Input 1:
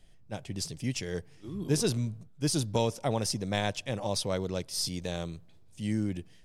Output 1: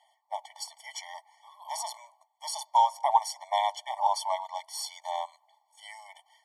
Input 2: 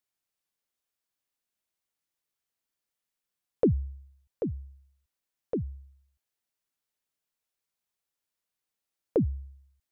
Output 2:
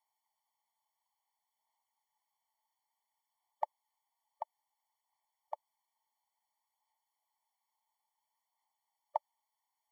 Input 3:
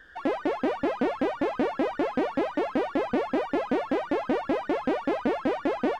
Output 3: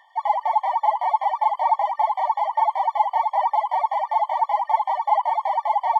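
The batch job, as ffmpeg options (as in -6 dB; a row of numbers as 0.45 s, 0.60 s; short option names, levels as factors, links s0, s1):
-af "highpass=f=870:t=q:w=9.5,aphaser=in_gain=1:out_gain=1:delay=4.6:decay=0.29:speed=0.58:type=sinusoidal,afftfilt=real='re*eq(mod(floor(b*sr/1024/590),2),1)':imag='im*eq(mod(floor(b*sr/1024/590),2),1)':win_size=1024:overlap=0.75"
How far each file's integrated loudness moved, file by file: +1.5 LU, -13.0 LU, +6.0 LU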